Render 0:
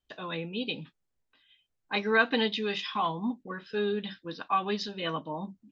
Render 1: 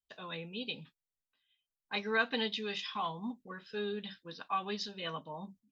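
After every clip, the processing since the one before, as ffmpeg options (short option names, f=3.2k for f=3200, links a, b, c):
-af "aemphasis=mode=production:type=cd,agate=range=-9dB:threshold=-51dB:ratio=16:detection=peak,equalizer=f=310:w=7.5:g=-10.5,volume=-7dB"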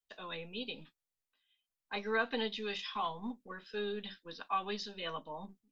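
-filter_complex "[0:a]acrossover=split=160|690|1400[a][b][c][d];[a]aeval=exprs='abs(val(0))':c=same[e];[d]alimiter=level_in=7.5dB:limit=-24dB:level=0:latency=1:release=102,volume=-7.5dB[f];[e][b][c][f]amix=inputs=4:normalize=0"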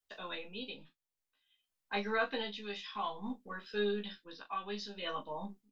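-af "tremolo=f=0.55:d=0.55,aecho=1:1:15|39:0.668|0.282,volume=1dB"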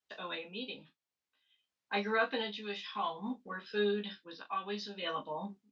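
-af "highpass=100,lowpass=5.9k,volume=2dB"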